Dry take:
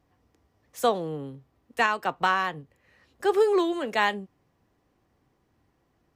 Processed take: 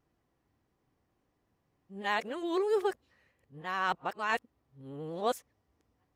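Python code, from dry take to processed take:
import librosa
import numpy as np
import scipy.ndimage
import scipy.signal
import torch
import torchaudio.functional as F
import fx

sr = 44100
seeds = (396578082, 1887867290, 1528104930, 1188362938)

y = np.flip(x).copy()
y = fx.vibrato(y, sr, rate_hz=11.0, depth_cents=39.0)
y = y * 10.0 ** (-7.5 / 20.0)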